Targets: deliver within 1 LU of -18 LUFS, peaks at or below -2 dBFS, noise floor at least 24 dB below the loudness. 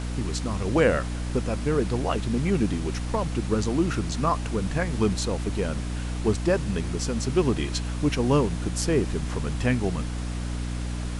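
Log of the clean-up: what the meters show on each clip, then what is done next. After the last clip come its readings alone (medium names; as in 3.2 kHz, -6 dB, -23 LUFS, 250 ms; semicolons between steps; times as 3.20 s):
hum 60 Hz; highest harmonic 300 Hz; hum level -28 dBFS; noise floor -30 dBFS; noise floor target -51 dBFS; loudness -26.5 LUFS; peak level -8.0 dBFS; loudness target -18.0 LUFS
-> de-hum 60 Hz, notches 5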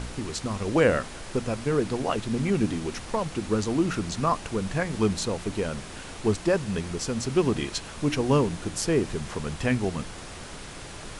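hum not found; noise floor -41 dBFS; noise floor target -51 dBFS
-> noise print and reduce 10 dB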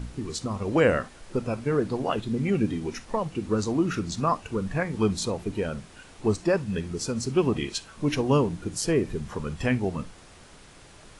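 noise floor -50 dBFS; noise floor target -52 dBFS
-> noise print and reduce 6 dB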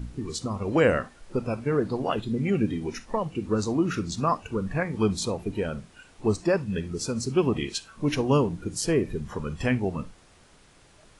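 noise floor -56 dBFS; loudness -27.5 LUFS; peak level -9.0 dBFS; loudness target -18.0 LUFS
-> trim +9.5 dB; peak limiter -2 dBFS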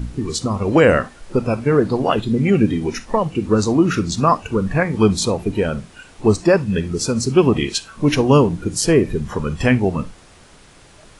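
loudness -18.0 LUFS; peak level -2.0 dBFS; noise floor -46 dBFS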